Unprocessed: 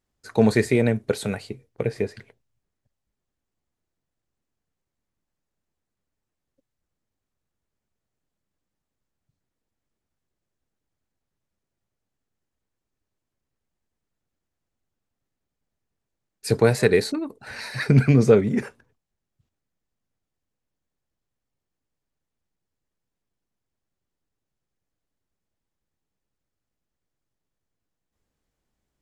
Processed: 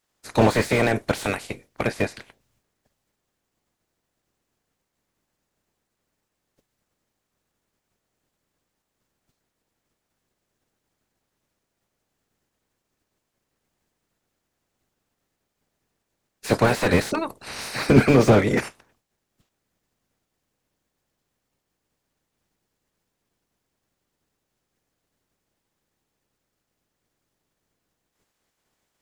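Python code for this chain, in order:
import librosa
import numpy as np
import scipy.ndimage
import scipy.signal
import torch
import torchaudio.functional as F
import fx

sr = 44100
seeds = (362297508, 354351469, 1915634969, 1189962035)

y = fx.spec_clip(x, sr, under_db=21)
y = fx.slew_limit(y, sr, full_power_hz=110.0)
y = F.gain(torch.from_numpy(y), 2.5).numpy()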